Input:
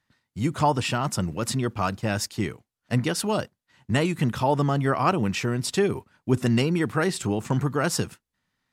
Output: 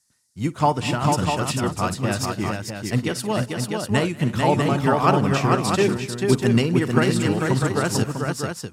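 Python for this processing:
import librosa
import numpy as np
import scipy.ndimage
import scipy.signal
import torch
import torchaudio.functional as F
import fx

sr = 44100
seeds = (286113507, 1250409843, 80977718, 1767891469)

y = fx.echo_multitap(x, sr, ms=(52, 188, 243, 319, 443, 647), db=(-16.5, -18.0, -16.0, -19.5, -3.0, -4.5))
y = fx.dmg_noise_band(y, sr, seeds[0], low_hz=4600.0, high_hz=11000.0, level_db=-63.0)
y = fx.upward_expand(y, sr, threshold_db=-35.0, expansion=1.5)
y = y * 10.0 ** (3.5 / 20.0)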